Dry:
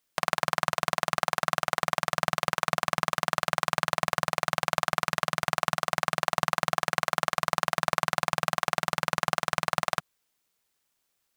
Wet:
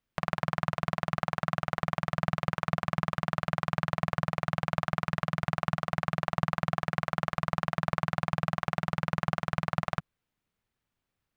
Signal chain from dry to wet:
bass and treble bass +13 dB, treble −13 dB
level −4 dB

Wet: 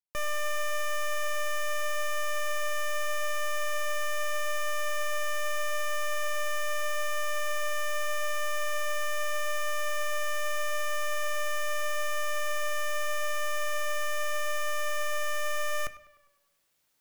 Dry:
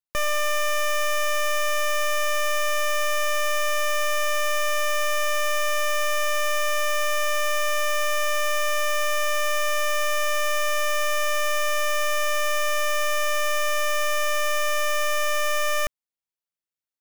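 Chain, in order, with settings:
reversed playback
upward compression, threshold −44 dBFS
reversed playback
tape delay 102 ms, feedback 58%, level −14.5 dB, low-pass 3,900 Hz
convolution reverb RT60 0.55 s, pre-delay 7 ms, DRR 12.5 dB
level −8.5 dB

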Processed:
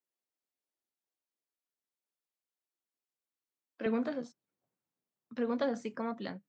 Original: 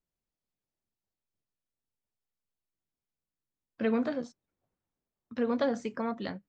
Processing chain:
high-pass filter 270 Hz 24 dB per octave, from 0:03.86 120 Hz
level −3.5 dB

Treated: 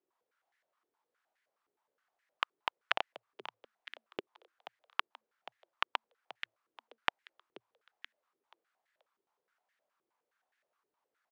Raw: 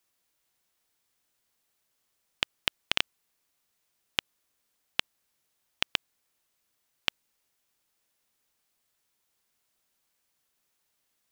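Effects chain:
echo with shifted repeats 481 ms, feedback 41%, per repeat +110 Hz, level −12.5 dB
band-pass on a step sequencer 9.6 Hz 390–1,800 Hz
level +9.5 dB

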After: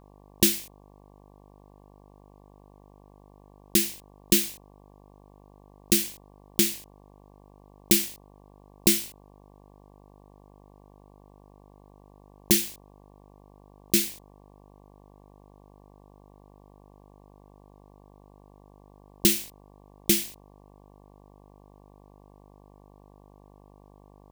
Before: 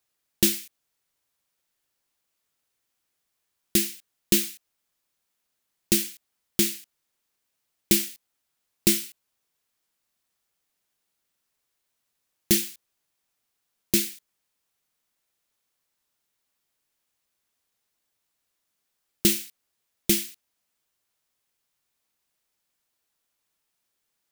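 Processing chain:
hum with harmonics 50 Hz, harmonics 23, −54 dBFS −3 dB per octave

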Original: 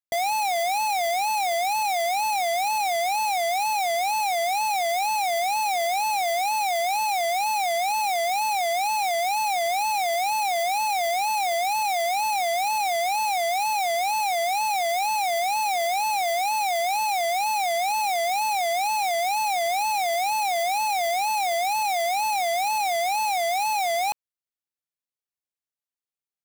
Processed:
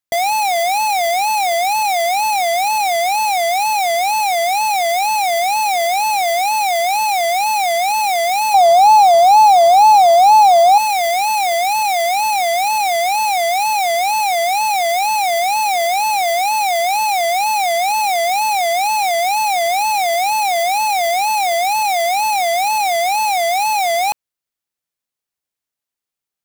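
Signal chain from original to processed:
0:08.54–0:10.78: graphic EQ with 10 bands 125 Hz +9 dB, 500 Hz +6 dB, 1,000 Hz +11 dB, 2,000 Hz −10 dB, 4,000 Hz +3 dB, 16,000 Hz −6 dB
level +8 dB

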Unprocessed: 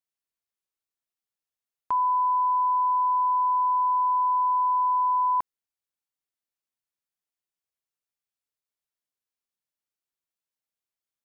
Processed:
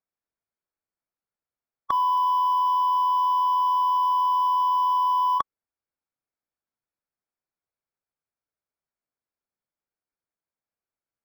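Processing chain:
adaptive Wiener filter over 15 samples
formants moved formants +2 semitones
level +5 dB

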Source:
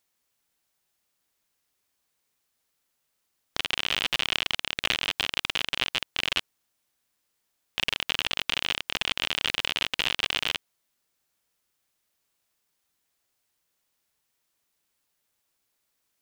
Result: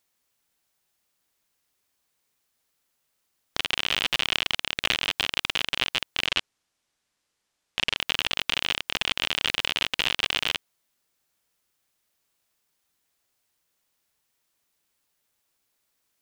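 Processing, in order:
0:06.26–0:07.97: low-pass filter 8,300 Hz 12 dB per octave
level +1.5 dB

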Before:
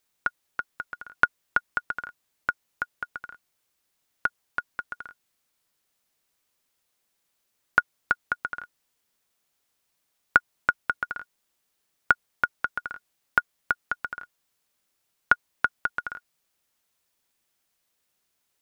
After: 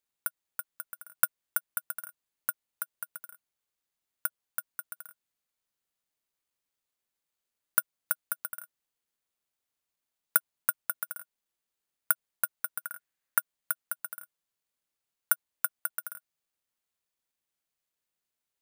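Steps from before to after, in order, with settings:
bad sample-rate conversion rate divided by 4×, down filtered, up zero stuff
0:12.84–0:13.38: parametric band 1,700 Hz +7.5 dB 0.79 octaves
level −11.5 dB

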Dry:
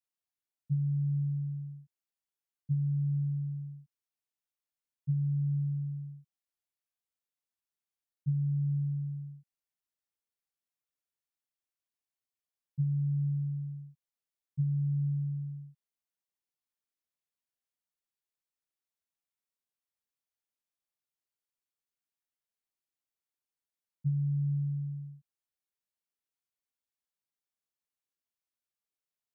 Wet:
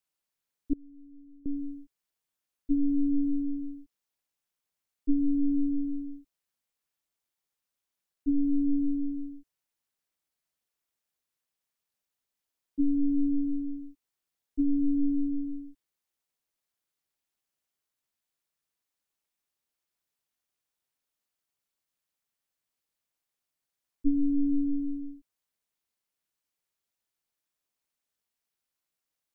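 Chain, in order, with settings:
0:00.73–0:01.46: gate with flip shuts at −31 dBFS, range −25 dB
ring modulation 140 Hz
level +9 dB

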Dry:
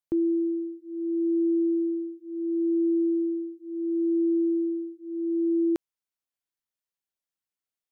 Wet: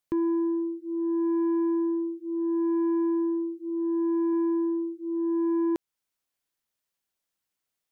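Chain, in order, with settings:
0:03.69–0:04.33: low-shelf EQ 190 Hz −3.5 dB
in parallel at +1.5 dB: downward compressor 6 to 1, threshold −36 dBFS, peak gain reduction 12.5 dB
on the sum: soft clipping −22 dBFS, distortion −17 dB

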